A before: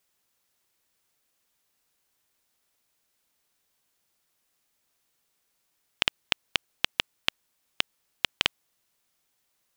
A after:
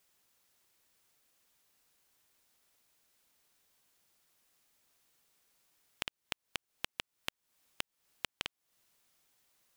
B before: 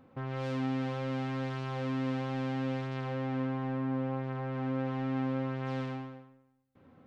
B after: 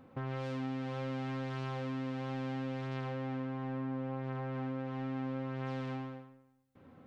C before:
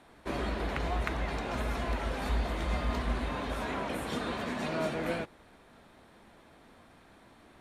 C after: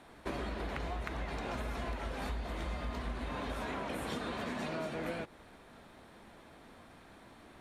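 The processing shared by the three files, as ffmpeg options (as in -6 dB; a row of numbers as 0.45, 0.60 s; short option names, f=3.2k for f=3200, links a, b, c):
-af "acompressor=threshold=-36dB:ratio=10,volume=1.5dB"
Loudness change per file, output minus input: -13.0, -4.0, -5.5 LU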